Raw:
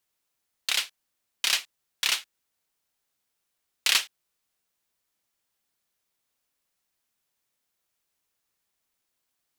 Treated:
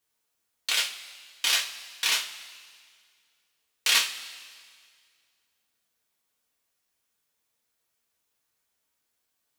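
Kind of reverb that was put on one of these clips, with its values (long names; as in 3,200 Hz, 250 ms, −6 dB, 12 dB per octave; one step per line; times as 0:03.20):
coupled-rooms reverb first 0.3 s, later 2 s, from −18 dB, DRR −3 dB
level −3 dB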